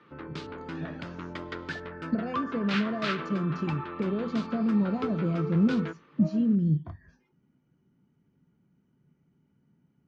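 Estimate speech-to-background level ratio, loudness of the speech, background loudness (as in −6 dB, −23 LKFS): 8.5 dB, −28.5 LKFS, −37.0 LKFS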